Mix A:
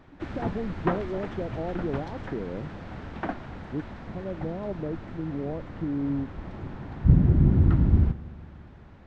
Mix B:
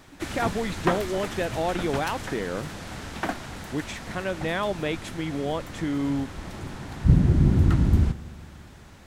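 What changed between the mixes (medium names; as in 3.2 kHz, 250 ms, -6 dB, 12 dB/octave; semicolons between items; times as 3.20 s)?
speech: remove Gaussian low-pass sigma 12 samples; master: remove tape spacing loss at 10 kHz 35 dB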